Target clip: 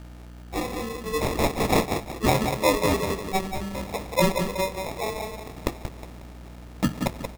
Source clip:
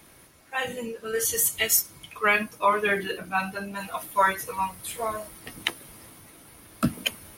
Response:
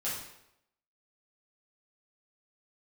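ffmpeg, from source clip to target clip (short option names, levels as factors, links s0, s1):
-filter_complex "[0:a]aecho=1:1:181|362|543|724:0.501|0.16|0.0513|0.0164,aeval=exprs='val(0)+0.00891*(sin(2*PI*60*n/s)+sin(2*PI*2*60*n/s)/2+sin(2*PI*3*60*n/s)/3+sin(2*PI*4*60*n/s)/4+sin(2*PI*5*60*n/s)/5)':c=same,asplit=2[s0][s1];[1:a]atrim=start_sample=2205[s2];[s1][s2]afir=irnorm=-1:irlink=0,volume=0.1[s3];[s0][s3]amix=inputs=2:normalize=0,acrusher=samples=29:mix=1:aa=0.000001"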